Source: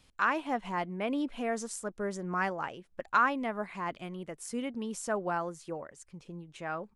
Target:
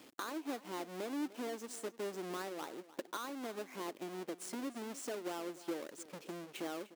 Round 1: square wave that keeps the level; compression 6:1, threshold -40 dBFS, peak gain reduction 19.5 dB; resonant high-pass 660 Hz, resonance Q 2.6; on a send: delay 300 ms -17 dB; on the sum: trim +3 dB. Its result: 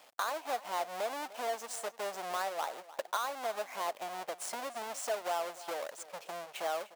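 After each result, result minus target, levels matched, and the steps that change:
250 Hz band -16.5 dB; compression: peak gain reduction -6 dB
change: resonant high-pass 320 Hz, resonance Q 2.6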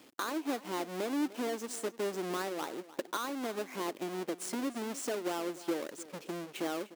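compression: peak gain reduction -6 dB
change: compression 6:1, threshold -47.5 dBFS, peak gain reduction 26 dB

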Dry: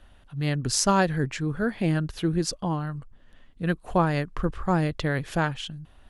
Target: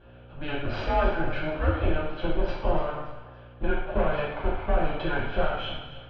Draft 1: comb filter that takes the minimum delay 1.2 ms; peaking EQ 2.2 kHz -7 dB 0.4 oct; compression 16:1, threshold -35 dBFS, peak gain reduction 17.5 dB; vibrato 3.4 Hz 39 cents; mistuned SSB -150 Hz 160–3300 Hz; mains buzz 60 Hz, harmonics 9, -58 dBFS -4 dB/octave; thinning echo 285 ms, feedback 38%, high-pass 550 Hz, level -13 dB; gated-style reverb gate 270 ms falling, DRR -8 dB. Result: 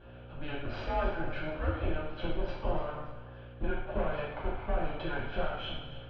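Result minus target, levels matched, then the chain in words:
compression: peak gain reduction +7.5 dB
comb filter that takes the minimum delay 1.2 ms; peaking EQ 2.2 kHz -7 dB 0.4 oct; compression 16:1, threshold -27 dBFS, peak gain reduction 10 dB; vibrato 3.4 Hz 39 cents; mistuned SSB -150 Hz 160–3300 Hz; mains buzz 60 Hz, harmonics 9, -58 dBFS -4 dB/octave; thinning echo 285 ms, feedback 38%, high-pass 550 Hz, level -13 dB; gated-style reverb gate 270 ms falling, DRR -8 dB

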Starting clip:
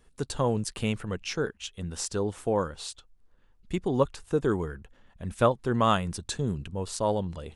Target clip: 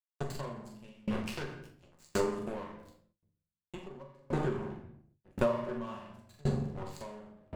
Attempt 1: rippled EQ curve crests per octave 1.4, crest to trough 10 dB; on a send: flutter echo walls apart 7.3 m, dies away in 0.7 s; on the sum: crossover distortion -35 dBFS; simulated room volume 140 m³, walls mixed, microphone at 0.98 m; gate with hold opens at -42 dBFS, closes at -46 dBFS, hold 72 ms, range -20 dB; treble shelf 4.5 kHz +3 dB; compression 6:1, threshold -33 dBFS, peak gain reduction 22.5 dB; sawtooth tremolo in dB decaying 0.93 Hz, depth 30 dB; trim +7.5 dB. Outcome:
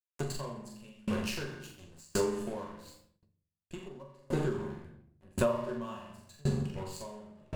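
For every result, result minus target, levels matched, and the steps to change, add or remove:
8 kHz band +6.0 dB; crossover distortion: distortion -6 dB
change: treble shelf 4.5 kHz -6 dB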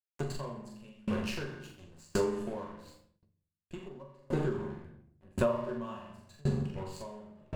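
crossover distortion: distortion -6 dB
change: crossover distortion -28 dBFS

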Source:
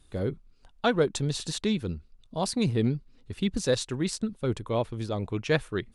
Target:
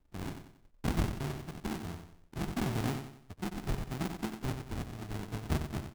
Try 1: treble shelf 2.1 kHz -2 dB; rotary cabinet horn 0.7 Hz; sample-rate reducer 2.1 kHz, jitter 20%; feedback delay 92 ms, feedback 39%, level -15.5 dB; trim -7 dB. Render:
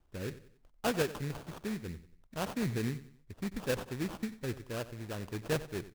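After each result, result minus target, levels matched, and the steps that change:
sample-rate reducer: distortion -17 dB; echo-to-direct -7.5 dB
change: sample-rate reducer 530 Hz, jitter 20%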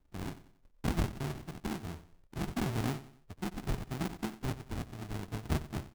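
echo-to-direct -7.5 dB
change: feedback delay 92 ms, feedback 39%, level -8 dB

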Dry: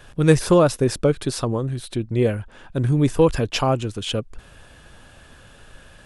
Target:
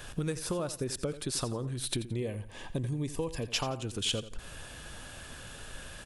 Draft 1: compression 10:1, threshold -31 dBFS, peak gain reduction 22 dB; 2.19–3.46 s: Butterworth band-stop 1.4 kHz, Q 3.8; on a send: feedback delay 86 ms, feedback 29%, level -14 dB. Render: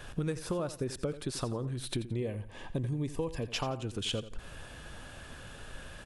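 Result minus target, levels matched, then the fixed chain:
8 kHz band -6.5 dB
compression 10:1, threshold -31 dBFS, peak gain reduction 22 dB; treble shelf 3.8 kHz +8.5 dB; 2.19–3.46 s: Butterworth band-stop 1.4 kHz, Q 3.8; on a send: feedback delay 86 ms, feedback 29%, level -14 dB

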